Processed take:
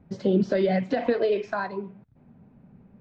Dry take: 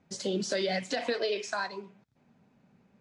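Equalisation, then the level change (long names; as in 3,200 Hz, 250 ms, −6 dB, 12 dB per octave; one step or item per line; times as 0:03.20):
head-to-tape spacing loss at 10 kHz 40 dB
low-shelf EQ 83 Hz +9.5 dB
low-shelf EQ 340 Hz +4.5 dB
+7.5 dB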